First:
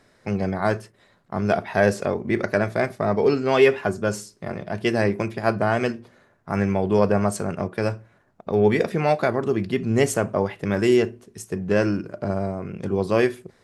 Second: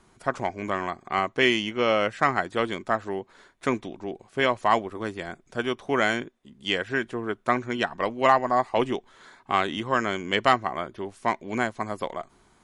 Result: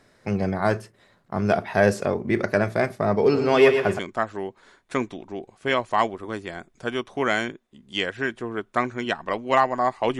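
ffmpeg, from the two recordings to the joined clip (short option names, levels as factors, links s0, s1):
-filter_complex "[0:a]asplit=3[s0][s1][s2];[s0]afade=t=out:st=3.33:d=0.02[s3];[s1]aecho=1:1:118|236|354|472:0.422|0.152|0.0547|0.0197,afade=t=in:st=3.33:d=0.02,afade=t=out:st=3.99:d=0.02[s4];[s2]afade=t=in:st=3.99:d=0.02[s5];[s3][s4][s5]amix=inputs=3:normalize=0,apad=whole_dur=10.19,atrim=end=10.19,atrim=end=3.992[s6];[1:a]atrim=start=2.708:end=8.91[s7];[s6][s7]acrossfade=d=0.004:c1=hsin:c2=hsin"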